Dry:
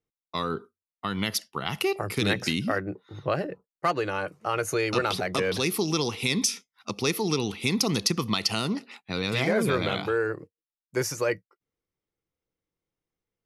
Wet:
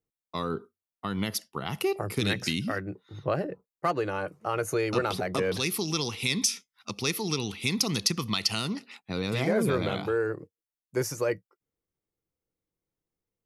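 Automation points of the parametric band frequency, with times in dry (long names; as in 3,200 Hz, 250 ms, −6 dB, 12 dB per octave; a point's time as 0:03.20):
parametric band −6 dB 2.9 octaves
2,800 Hz
from 0:02.21 720 Hz
from 0:03.24 3,600 Hz
from 0:05.57 510 Hz
from 0:08.99 2,800 Hz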